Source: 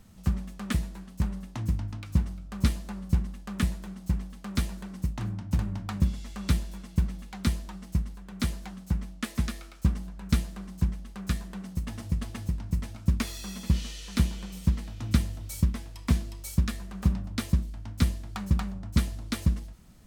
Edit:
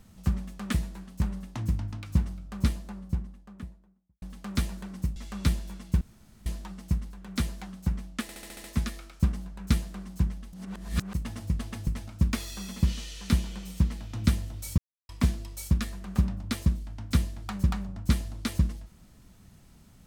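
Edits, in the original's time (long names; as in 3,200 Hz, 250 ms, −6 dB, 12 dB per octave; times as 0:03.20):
0:02.23–0:04.22: fade out and dull
0:05.16–0:06.20: remove
0:07.05–0:07.50: fill with room tone
0:09.26: stutter 0.07 s, 7 plays
0:11.15–0:11.76: reverse
0:12.50–0:12.75: remove
0:15.65–0:15.96: silence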